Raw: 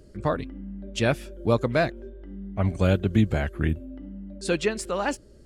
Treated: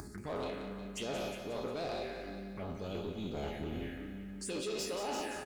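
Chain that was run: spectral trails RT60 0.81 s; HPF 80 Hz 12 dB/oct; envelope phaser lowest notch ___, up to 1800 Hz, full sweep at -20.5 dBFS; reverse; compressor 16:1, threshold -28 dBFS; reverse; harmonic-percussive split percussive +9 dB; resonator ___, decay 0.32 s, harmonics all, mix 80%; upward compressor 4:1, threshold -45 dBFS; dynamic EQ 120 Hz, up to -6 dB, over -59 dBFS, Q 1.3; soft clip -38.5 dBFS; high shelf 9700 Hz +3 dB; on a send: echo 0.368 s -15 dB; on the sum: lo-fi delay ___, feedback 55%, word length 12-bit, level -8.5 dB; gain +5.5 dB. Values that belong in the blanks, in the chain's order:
490 Hz, 420 Hz, 0.179 s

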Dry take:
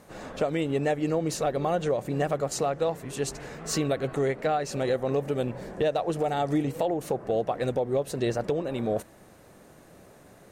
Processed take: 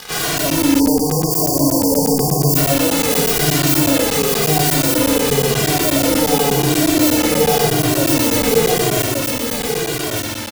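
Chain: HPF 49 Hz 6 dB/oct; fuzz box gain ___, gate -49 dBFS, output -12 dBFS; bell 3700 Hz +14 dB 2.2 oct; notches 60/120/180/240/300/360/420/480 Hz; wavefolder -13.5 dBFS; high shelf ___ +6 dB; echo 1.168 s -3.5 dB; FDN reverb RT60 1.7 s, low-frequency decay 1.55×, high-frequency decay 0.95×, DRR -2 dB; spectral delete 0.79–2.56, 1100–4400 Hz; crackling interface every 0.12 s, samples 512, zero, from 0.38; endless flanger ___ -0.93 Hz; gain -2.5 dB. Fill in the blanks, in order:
46 dB, 11000 Hz, 2 ms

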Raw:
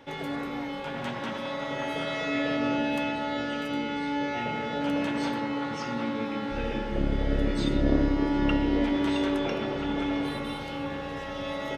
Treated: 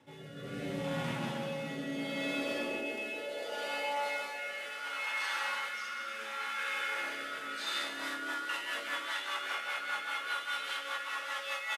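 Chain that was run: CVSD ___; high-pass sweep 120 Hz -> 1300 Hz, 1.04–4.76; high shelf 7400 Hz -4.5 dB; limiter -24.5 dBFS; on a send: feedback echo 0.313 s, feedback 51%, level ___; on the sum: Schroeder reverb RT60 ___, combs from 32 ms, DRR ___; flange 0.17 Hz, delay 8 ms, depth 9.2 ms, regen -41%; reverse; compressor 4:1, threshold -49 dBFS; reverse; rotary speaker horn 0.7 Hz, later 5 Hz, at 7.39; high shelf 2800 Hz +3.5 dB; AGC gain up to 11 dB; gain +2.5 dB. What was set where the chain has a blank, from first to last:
64 kbps, -22 dB, 1.8 s, -3 dB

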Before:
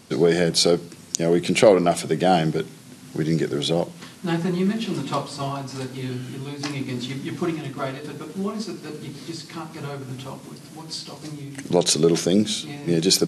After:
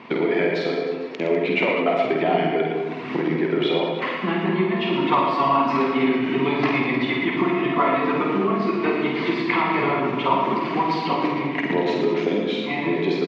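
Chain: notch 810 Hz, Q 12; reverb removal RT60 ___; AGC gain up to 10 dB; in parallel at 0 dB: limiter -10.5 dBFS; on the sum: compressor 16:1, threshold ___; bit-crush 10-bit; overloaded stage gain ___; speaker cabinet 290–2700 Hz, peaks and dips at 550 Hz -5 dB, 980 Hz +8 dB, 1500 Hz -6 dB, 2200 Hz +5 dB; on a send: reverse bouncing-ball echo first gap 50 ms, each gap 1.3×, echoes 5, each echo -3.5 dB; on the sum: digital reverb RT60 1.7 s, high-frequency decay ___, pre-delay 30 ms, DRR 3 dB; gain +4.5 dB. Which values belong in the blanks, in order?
1 s, -22 dBFS, 13 dB, 0.45×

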